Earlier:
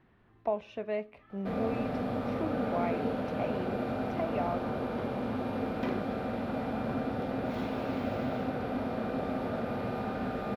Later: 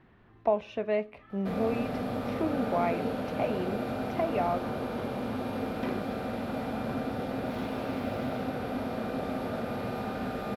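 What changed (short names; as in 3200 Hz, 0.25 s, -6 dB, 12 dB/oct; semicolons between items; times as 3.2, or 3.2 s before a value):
speech +5.0 dB; first sound: add high shelf 4800 Hz +10.5 dB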